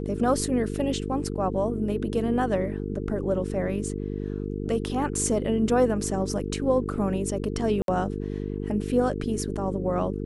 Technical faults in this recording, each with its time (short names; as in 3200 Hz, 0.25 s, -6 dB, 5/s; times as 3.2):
buzz 50 Hz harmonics 9 -31 dBFS
7.82–7.88 gap 62 ms